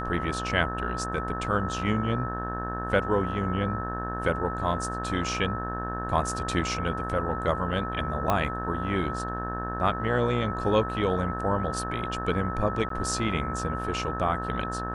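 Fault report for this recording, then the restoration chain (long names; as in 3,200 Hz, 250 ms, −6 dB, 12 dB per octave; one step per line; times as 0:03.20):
mains buzz 60 Hz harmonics 30 −34 dBFS
whistle 1,300 Hz −33 dBFS
0:08.30: click −11 dBFS
0:12.89–0:12.90: drop-out 13 ms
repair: click removal
hum removal 60 Hz, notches 30
notch filter 1,300 Hz, Q 30
repair the gap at 0:12.89, 13 ms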